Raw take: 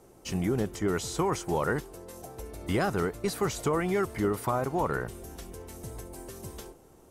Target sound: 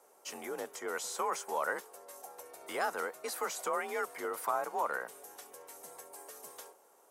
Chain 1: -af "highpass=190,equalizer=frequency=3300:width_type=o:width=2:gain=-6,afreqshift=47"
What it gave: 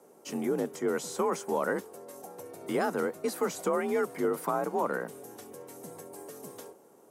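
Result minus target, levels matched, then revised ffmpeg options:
250 Hz band +11.0 dB
-af "highpass=680,equalizer=frequency=3300:width_type=o:width=2:gain=-6,afreqshift=47"

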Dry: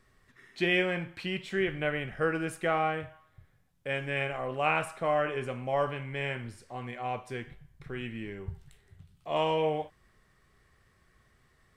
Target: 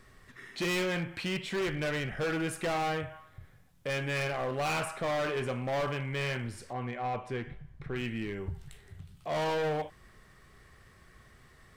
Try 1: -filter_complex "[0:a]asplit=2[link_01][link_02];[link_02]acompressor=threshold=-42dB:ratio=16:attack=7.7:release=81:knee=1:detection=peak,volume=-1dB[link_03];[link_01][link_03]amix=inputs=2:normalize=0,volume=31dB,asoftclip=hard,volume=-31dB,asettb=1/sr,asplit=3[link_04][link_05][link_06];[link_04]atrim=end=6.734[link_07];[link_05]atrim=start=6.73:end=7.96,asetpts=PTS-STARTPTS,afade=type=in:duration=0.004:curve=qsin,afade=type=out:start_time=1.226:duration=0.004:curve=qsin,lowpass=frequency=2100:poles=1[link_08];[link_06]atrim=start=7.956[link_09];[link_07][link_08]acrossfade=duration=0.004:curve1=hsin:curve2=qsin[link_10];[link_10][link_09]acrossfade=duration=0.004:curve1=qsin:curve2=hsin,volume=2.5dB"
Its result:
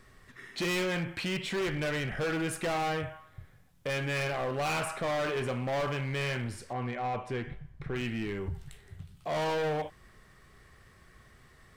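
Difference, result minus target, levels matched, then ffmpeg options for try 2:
downward compressor: peak gain reduction −11 dB
-filter_complex "[0:a]asplit=2[link_01][link_02];[link_02]acompressor=threshold=-53.5dB:ratio=16:attack=7.7:release=81:knee=1:detection=peak,volume=-1dB[link_03];[link_01][link_03]amix=inputs=2:normalize=0,volume=31dB,asoftclip=hard,volume=-31dB,asettb=1/sr,asplit=3[link_04][link_05][link_06];[link_04]atrim=end=6.734[link_07];[link_05]atrim=start=6.73:end=7.96,asetpts=PTS-STARTPTS,afade=type=in:duration=0.004:curve=qsin,afade=type=out:start_time=1.226:duration=0.004:curve=qsin,lowpass=frequency=2100:poles=1[link_08];[link_06]atrim=start=7.956[link_09];[link_07][link_08]acrossfade=duration=0.004:curve1=hsin:curve2=qsin[link_10];[link_10][link_09]acrossfade=duration=0.004:curve1=qsin:curve2=hsin,volume=2.5dB"

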